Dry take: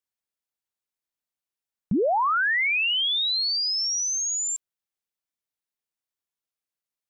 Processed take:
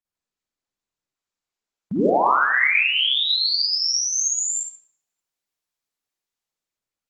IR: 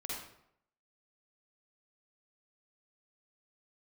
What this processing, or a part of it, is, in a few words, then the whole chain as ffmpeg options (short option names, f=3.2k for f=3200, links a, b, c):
far-field microphone of a smart speaker: -filter_complex "[1:a]atrim=start_sample=2205[a];[0:a][a]afir=irnorm=-1:irlink=0,highpass=140,dynaudnorm=f=250:g=9:m=9dB,volume=-3.5dB" -ar 48000 -c:a libopus -b:a 16k